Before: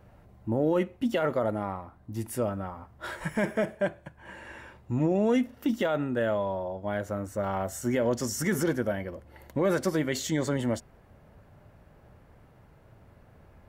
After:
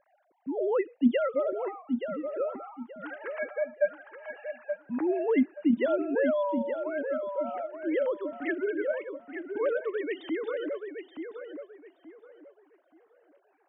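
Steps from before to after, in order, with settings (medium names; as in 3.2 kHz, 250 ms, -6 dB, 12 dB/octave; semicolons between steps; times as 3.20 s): formants replaced by sine waves; on a send: filtered feedback delay 876 ms, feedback 28%, low-pass 2.5 kHz, level -7 dB; on the sum: trim -1.5 dB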